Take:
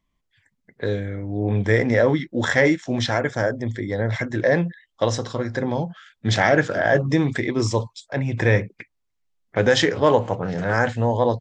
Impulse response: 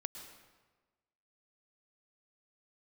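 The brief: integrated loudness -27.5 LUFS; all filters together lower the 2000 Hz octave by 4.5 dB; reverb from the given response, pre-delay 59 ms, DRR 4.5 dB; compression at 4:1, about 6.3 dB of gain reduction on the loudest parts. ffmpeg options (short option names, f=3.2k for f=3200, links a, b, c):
-filter_complex "[0:a]equalizer=f=2k:t=o:g=-5.5,acompressor=threshold=-20dB:ratio=4,asplit=2[a][b];[1:a]atrim=start_sample=2205,adelay=59[c];[b][c]afir=irnorm=-1:irlink=0,volume=-2.5dB[d];[a][d]amix=inputs=2:normalize=0,volume=-2.5dB"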